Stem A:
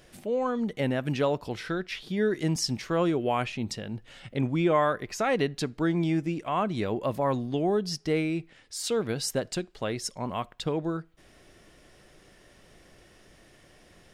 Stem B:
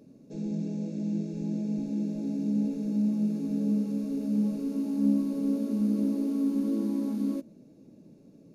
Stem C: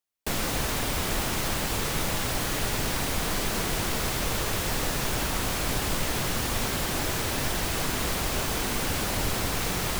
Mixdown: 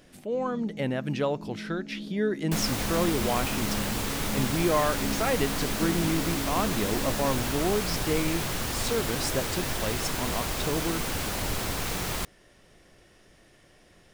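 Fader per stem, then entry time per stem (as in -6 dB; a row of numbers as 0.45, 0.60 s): -1.5, -8.5, -2.5 dB; 0.00, 0.00, 2.25 s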